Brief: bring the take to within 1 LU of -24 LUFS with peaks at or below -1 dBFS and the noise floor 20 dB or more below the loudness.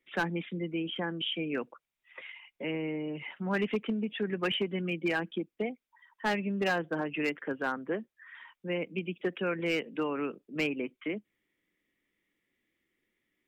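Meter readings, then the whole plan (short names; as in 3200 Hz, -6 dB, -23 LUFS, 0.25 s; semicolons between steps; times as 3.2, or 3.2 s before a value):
clipped 0.5%; flat tops at -23.0 dBFS; loudness -33.5 LUFS; peak -23.0 dBFS; loudness target -24.0 LUFS
-> clip repair -23 dBFS; gain +9.5 dB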